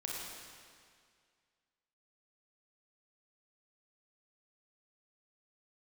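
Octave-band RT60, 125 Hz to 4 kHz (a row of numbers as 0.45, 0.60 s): 2.1, 2.0, 2.1, 2.0, 2.0, 1.9 s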